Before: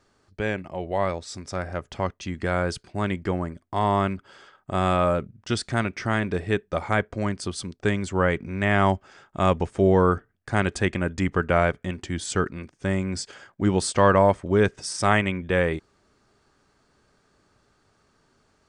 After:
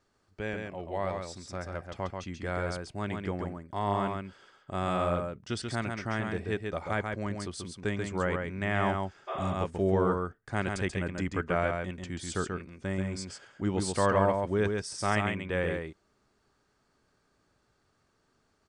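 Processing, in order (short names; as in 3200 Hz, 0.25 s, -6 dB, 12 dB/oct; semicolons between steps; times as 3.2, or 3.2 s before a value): echo 0.136 s -4.5 dB; spectral repair 9.31–9.52, 360–3700 Hz after; gain -8.5 dB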